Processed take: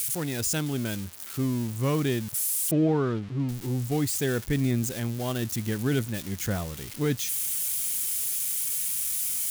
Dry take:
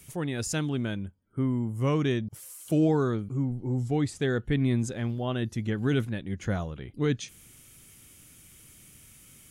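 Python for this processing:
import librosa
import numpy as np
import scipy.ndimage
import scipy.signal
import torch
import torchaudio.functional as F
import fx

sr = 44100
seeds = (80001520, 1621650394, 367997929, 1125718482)

y = x + 0.5 * 10.0 ** (-24.5 / 20.0) * np.diff(np.sign(x), prepend=np.sign(x[:1]))
y = fx.lowpass(y, sr, hz=2800.0, slope=12, at=(2.71, 3.49))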